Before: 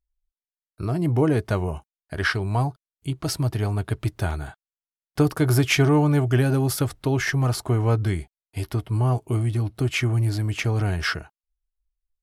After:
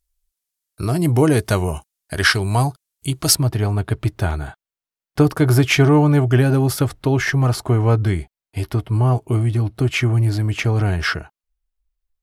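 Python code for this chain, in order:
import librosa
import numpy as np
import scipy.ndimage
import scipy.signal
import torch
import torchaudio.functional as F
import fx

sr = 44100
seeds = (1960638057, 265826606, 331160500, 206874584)

y = fx.peak_eq(x, sr, hz=11000.0, db=fx.steps((0.0, 12.5), (3.35, -3.5)), octaves=2.4)
y = y * 10.0 ** (5.0 / 20.0)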